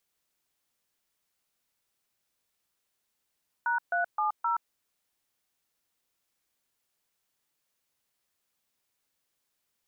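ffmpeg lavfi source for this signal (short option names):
-f lavfi -i "aevalsrc='0.0422*clip(min(mod(t,0.261),0.124-mod(t,0.261))/0.002,0,1)*(eq(floor(t/0.261),0)*(sin(2*PI*941*mod(t,0.261))+sin(2*PI*1477*mod(t,0.261)))+eq(floor(t/0.261),1)*(sin(2*PI*697*mod(t,0.261))+sin(2*PI*1477*mod(t,0.261)))+eq(floor(t/0.261),2)*(sin(2*PI*852*mod(t,0.261))+sin(2*PI*1209*mod(t,0.261)))+eq(floor(t/0.261),3)*(sin(2*PI*941*mod(t,0.261))+sin(2*PI*1336*mod(t,0.261))))':d=1.044:s=44100"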